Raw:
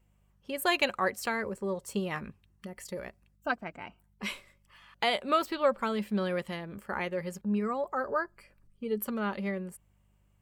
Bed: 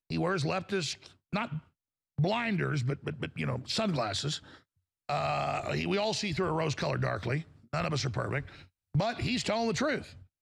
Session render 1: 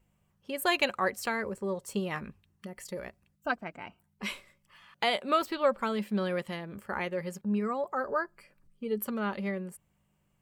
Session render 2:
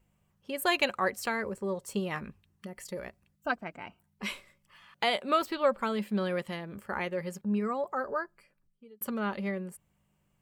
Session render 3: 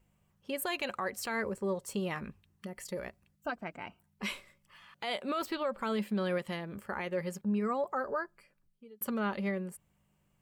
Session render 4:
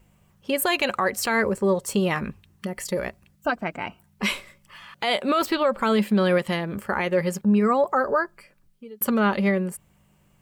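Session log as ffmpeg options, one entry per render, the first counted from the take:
-af "bandreject=f=50:t=h:w=4,bandreject=f=100:t=h:w=4"
-filter_complex "[0:a]asettb=1/sr,asplit=3[a][b][c];[a]atrim=end=5.724[d];[b]atrim=start=5.72:end=6.38,asetpts=PTS-STARTPTS,afade=t=in:d=0.004:c=qsin,afade=t=out:st=0.656:d=0.004:c=qsin,bandreject=f=5.7k:w=12[e];[c]atrim=start=6.376[f];[d][e]acrossfade=d=0.004:c1=hsin:c2=qsin[g];[g][f]acrossfade=d=0.004:c1=qsin:c2=hsin,asplit=2[h][i];[h]atrim=end=9.01,asetpts=PTS-STARTPTS,afade=t=out:st=7.9:d=1.11[j];[i]atrim=start=9.01,asetpts=PTS-STARTPTS,afade=t=in:d=0.004:c=hsin[k];[j][k]concat=n=2:v=0:a=1"
-af "alimiter=level_in=0.5dB:limit=-24dB:level=0:latency=1:release=86,volume=-0.5dB"
-af "volume=12dB"

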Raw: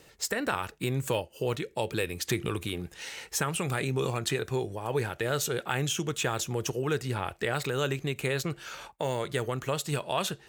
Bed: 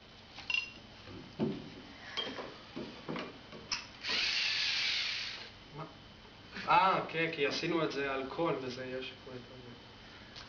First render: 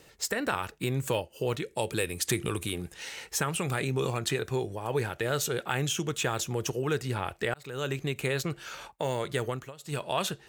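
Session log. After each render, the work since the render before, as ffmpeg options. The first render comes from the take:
-filter_complex "[0:a]asettb=1/sr,asplit=3[a][b][c];[a]atrim=end=1.664[d];[b]atrim=start=1.66:end=2.93,asetpts=PTS-STARTPTS,afade=t=in:d=0.004:c=qsin,afade=t=out:st=1.266:d=0.004:c=qsin,equalizer=f=9.3k:t=o:w=0.81:g=8.5[e];[c]atrim=start=2.926[f];[d][e]acrossfade=d=0.004:c1=hsin:c2=qsin[g];[g][f]acrossfade=d=0.004:c1=qsin:c2=hsin,asplit=4[h][i][j][k];[h]atrim=end=7.54,asetpts=PTS-STARTPTS,afade=t=out:st=7.536:d=0.004:c=hsin[l];[i]atrim=start=7.54:end=9.73,asetpts=PTS-STARTPTS,afade=t=in:d=0.44,afade=t=out:st=1.95:d=0.24:silence=0.112202[m];[j]atrim=start=9.73:end=9.78,asetpts=PTS-STARTPTS,volume=-19dB[n];[k]atrim=start=9.78,asetpts=PTS-STARTPTS,afade=t=in:d=0.24:silence=0.112202[o];[l][m][n][o]concat=n=4:v=0:a=1"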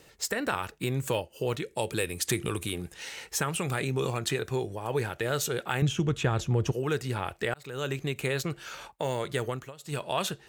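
-filter_complex "[0:a]asettb=1/sr,asplit=3[a][b][c];[a]atrim=end=5.824[d];[b]atrim=start=5.82:end=6.72,asetpts=PTS-STARTPTS,afade=t=in:d=0.004:c=qsin,afade=t=out:st=0.896:d=0.004:c=qsin,aemphasis=mode=reproduction:type=bsi[e];[c]atrim=start=6.716[f];[d][e]acrossfade=d=0.004:c1=hsin:c2=qsin[g];[g][f]acrossfade=d=0.004:c1=qsin:c2=hsin"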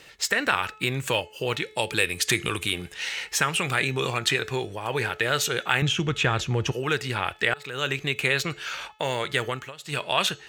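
-af "equalizer=f=2.5k:t=o:w=2.5:g=11.5,bandreject=f=430.7:t=h:w=4,bandreject=f=861.4:t=h:w=4,bandreject=f=1.2921k:t=h:w=4,bandreject=f=1.7228k:t=h:w=4,bandreject=f=2.1535k:t=h:w=4,bandreject=f=2.5842k:t=h:w=4,bandreject=f=3.0149k:t=h:w=4,bandreject=f=3.4456k:t=h:w=4,bandreject=f=3.8763k:t=h:w=4,bandreject=f=4.307k:t=h:w=4,bandreject=f=4.7377k:t=h:w=4,bandreject=f=5.1684k:t=h:w=4,bandreject=f=5.5991k:t=h:w=4,bandreject=f=6.0298k:t=h:w=4,bandreject=f=6.4605k:t=h:w=4,bandreject=f=6.8912k:t=h:w=4,bandreject=f=7.3219k:t=h:w=4,bandreject=f=7.7526k:t=h:w=4"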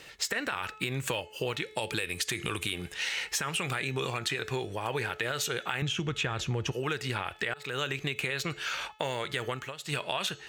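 -af "alimiter=limit=-13dB:level=0:latency=1,acompressor=threshold=-28dB:ratio=6"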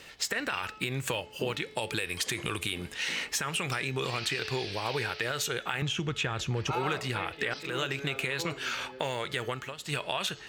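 -filter_complex "[1:a]volume=-7.5dB[a];[0:a][a]amix=inputs=2:normalize=0"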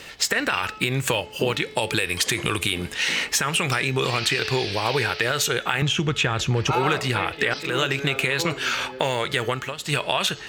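-af "volume=9dB"

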